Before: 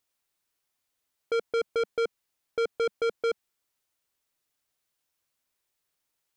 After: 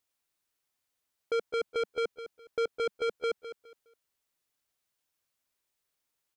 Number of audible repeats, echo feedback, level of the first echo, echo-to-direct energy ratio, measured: 2, 26%, -12.0 dB, -11.5 dB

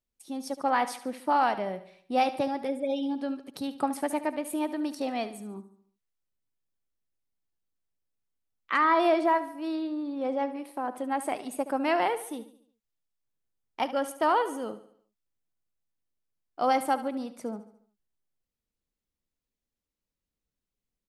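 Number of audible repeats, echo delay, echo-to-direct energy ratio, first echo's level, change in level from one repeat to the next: 4, 72 ms, -13.0 dB, -14.0 dB, -6.5 dB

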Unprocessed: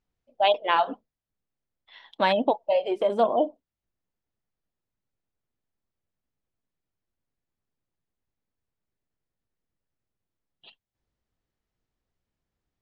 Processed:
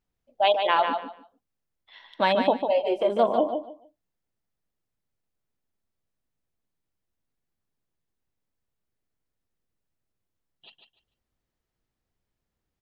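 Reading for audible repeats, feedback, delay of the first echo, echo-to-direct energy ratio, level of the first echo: 3, 21%, 0.148 s, -6.5 dB, -6.5 dB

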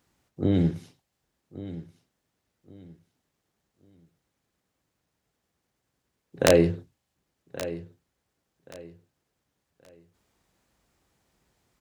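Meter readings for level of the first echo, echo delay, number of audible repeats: -15.0 dB, 1.127 s, 2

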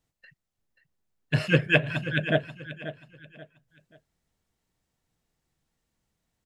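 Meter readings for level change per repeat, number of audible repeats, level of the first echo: -10.0 dB, 3, -13.0 dB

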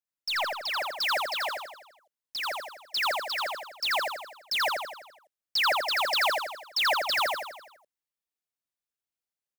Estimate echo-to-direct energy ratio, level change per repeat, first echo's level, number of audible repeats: -1.5 dB, -5.5 dB, -3.0 dB, 6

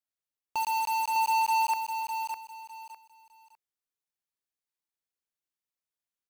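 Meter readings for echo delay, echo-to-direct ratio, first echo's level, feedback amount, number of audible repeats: 0.605 s, -5.5 dB, -6.0 dB, 26%, 3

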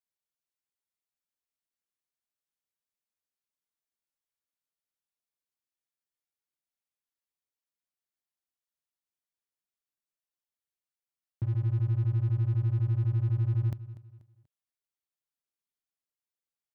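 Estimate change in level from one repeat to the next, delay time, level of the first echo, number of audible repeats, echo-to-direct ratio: -9.0 dB, 0.242 s, -16.0 dB, 3, -15.5 dB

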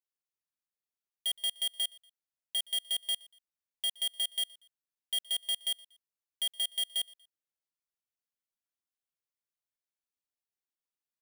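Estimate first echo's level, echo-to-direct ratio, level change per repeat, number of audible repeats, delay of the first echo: -23.5 dB, -23.0 dB, -9.0 dB, 2, 0.119 s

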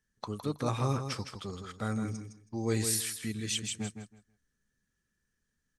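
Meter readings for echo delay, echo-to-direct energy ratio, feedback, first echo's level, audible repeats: 0.161 s, -8.0 dB, 19%, -8.0 dB, 2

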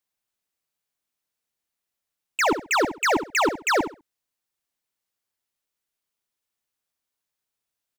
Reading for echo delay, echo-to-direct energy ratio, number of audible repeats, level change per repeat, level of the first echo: 67 ms, -10.0 dB, 2, -13.5 dB, -10.0 dB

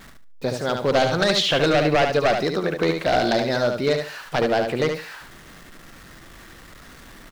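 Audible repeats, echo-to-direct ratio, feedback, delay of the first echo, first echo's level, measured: 3, -5.5 dB, 22%, 73 ms, -5.5 dB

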